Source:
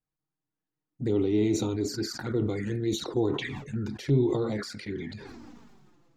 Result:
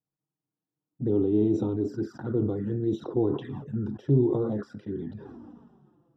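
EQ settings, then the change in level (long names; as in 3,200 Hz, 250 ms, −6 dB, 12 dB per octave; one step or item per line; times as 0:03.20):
moving average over 20 samples
high-pass filter 94 Hz
low-shelf EQ 430 Hz +3 dB
0.0 dB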